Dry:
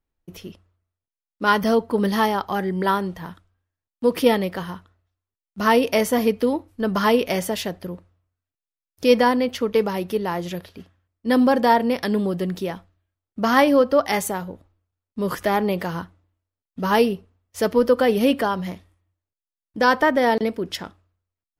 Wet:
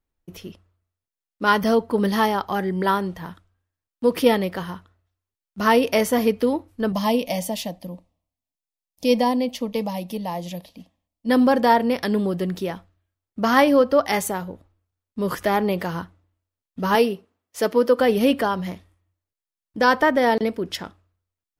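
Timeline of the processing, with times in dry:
6.92–11.29 s: static phaser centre 390 Hz, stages 6
16.95–17.99 s: high-pass 220 Hz

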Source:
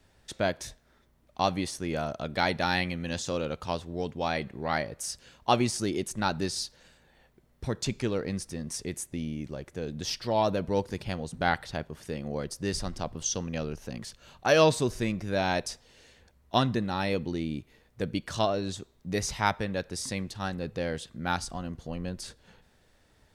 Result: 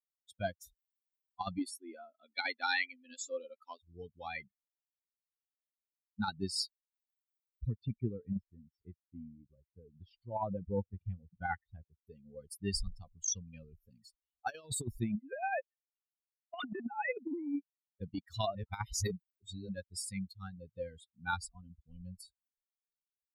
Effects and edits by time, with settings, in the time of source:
1.58–3.83 s: brick-wall FIR band-pass 210–12000 Hz
4.52–6.19 s: room tone
7.70–12.07 s: distance through air 330 m
15.16–18.01 s: formants replaced by sine waves
18.55–19.69 s: reverse
whole clip: expander on every frequency bin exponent 3; dynamic bell 230 Hz, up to +6 dB, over -53 dBFS, Q 3.5; compressor with a negative ratio -35 dBFS, ratio -0.5; trim +1 dB

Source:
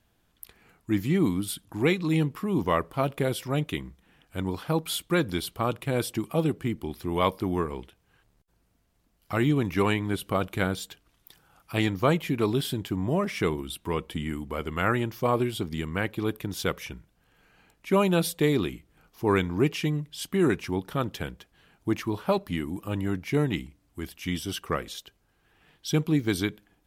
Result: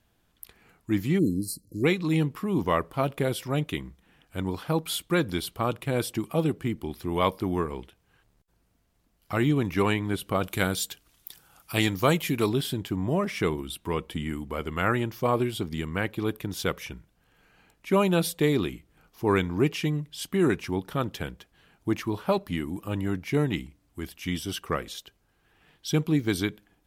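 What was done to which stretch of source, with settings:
1.19–1.84 s: spectral selection erased 600–4000 Hz
10.43–12.49 s: treble shelf 3.7 kHz +11 dB

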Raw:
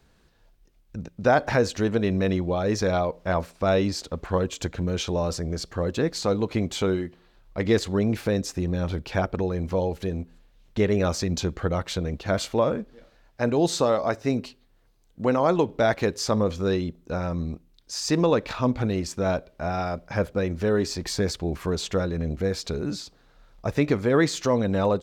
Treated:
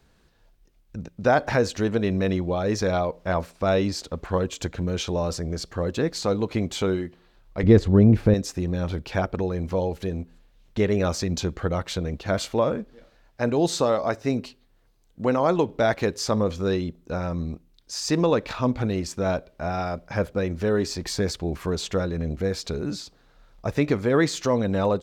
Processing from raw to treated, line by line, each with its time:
7.63–8.34 s: tilt EQ -3.5 dB/octave

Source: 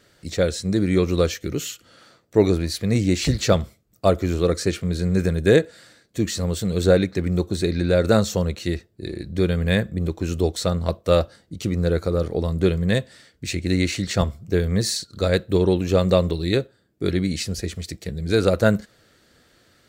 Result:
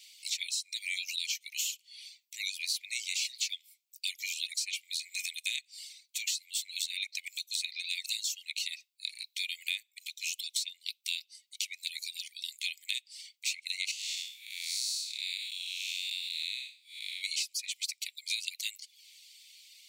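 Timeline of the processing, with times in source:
13.91–17.22 s: spectral blur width 260 ms
whole clip: steep high-pass 2.2 kHz 96 dB/octave; reverb removal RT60 0.55 s; compression 6:1, threshold -40 dBFS; trim +8.5 dB

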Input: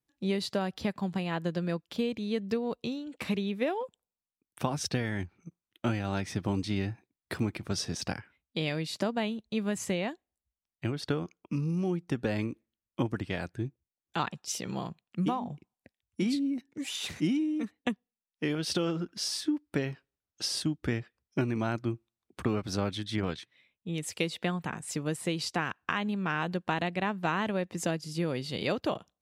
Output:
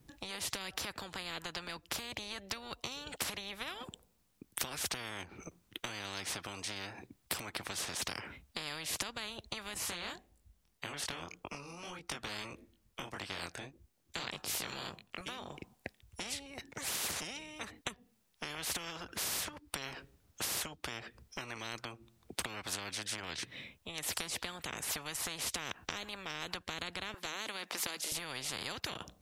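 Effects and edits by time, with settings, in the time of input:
9.74–15.21 s: chorus 1.7 Hz, delay 20 ms, depth 3.9 ms
27.14–28.12 s: inverse Chebyshev high-pass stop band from 180 Hz
whole clip: bass shelf 400 Hz +11.5 dB; compression 6:1, threshold -30 dBFS; spectrum-flattening compressor 10:1; trim +5 dB

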